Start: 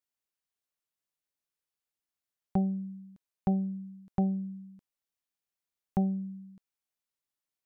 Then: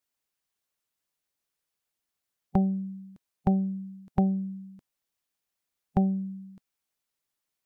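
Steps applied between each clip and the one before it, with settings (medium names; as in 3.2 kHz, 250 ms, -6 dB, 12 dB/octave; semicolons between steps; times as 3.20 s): harmonic-percussive split percussive +4 dB; trim +3.5 dB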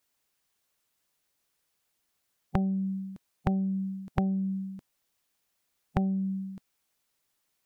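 compression 6:1, threshold -33 dBFS, peak gain reduction 13 dB; trim +7.5 dB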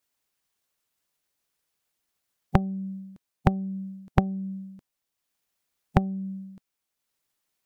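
transient shaper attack +11 dB, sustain -4 dB; trim -2.5 dB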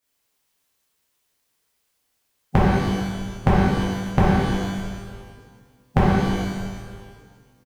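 frequency-shifting echo 298 ms, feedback 39%, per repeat -80 Hz, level -14 dB; pitch-shifted reverb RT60 1.3 s, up +12 st, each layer -8 dB, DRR -8 dB; trim -1 dB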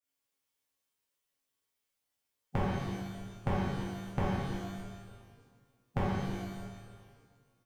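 chord resonator F#2 major, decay 0.23 s; trim -2.5 dB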